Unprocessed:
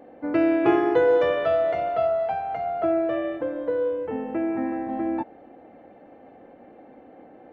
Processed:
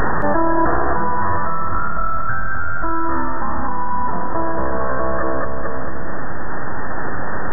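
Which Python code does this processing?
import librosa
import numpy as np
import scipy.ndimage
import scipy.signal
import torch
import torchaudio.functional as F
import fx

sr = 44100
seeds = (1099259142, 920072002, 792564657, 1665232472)

p1 = scipy.signal.sosfilt(scipy.signal.butter(2, 120.0, 'highpass', fs=sr, output='sos'), x)
p2 = fx.low_shelf(p1, sr, hz=370.0, db=-8.5)
p3 = fx.quant_dither(p2, sr, seeds[0], bits=6, dither='triangular')
p4 = p2 + F.gain(torch.from_numpy(p3), -4.0).numpy()
p5 = np.abs(p4)
p6 = fx.brickwall_lowpass(p5, sr, high_hz=1900.0)
p7 = fx.echo_split(p6, sr, split_hz=310.0, low_ms=421, high_ms=222, feedback_pct=52, wet_db=-6.0)
y = fx.env_flatten(p7, sr, amount_pct=100)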